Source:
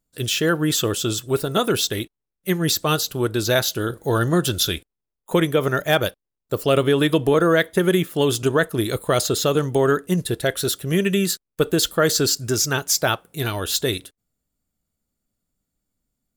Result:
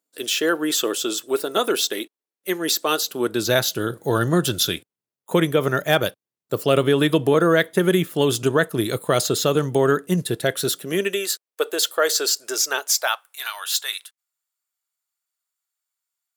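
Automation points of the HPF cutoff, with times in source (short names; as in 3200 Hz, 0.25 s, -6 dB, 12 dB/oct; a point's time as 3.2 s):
HPF 24 dB/oct
3 s 280 Hz
3.53 s 110 Hz
10.6 s 110 Hz
11.27 s 440 Hz
12.8 s 440 Hz
13.26 s 950 Hz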